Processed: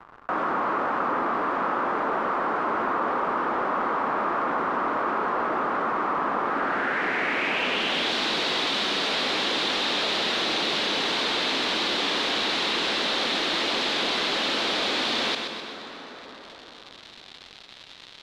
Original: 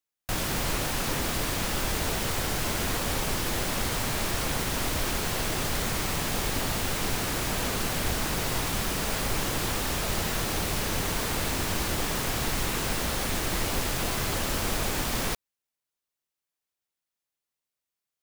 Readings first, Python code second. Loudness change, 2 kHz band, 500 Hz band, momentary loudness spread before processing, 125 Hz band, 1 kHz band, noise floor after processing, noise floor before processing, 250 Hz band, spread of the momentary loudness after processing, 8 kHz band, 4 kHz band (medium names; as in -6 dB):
+3.5 dB, +5.5 dB, +4.5 dB, 0 LU, -14.0 dB, +8.5 dB, -47 dBFS, under -85 dBFS, +1.5 dB, 15 LU, -10.5 dB, +7.5 dB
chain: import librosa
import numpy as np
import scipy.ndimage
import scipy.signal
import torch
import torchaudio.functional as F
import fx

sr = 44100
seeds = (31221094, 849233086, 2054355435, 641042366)

p1 = scipy.signal.sosfilt(scipy.signal.butter(4, 240.0, 'highpass', fs=sr, output='sos'), x)
p2 = fx.high_shelf(p1, sr, hz=5700.0, db=-5.0)
p3 = fx.dmg_crackle(p2, sr, seeds[0], per_s=270.0, level_db=-56.0)
p4 = (np.mod(10.0 ** (25.0 / 20.0) * p3 + 1.0, 2.0) - 1.0) / 10.0 ** (25.0 / 20.0)
p5 = p3 + F.gain(torch.from_numpy(p4), -7.0).numpy()
p6 = fx.filter_sweep_lowpass(p5, sr, from_hz=1200.0, to_hz=3800.0, start_s=6.42, end_s=8.13, q=3.3)
p7 = p6 + fx.echo_feedback(p6, sr, ms=127, feedback_pct=35, wet_db=-11.5, dry=0)
p8 = fx.rev_plate(p7, sr, seeds[1], rt60_s=3.4, hf_ratio=0.65, predelay_ms=0, drr_db=16.5)
y = fx.env_flatten(p8, sr, amount_pct=50)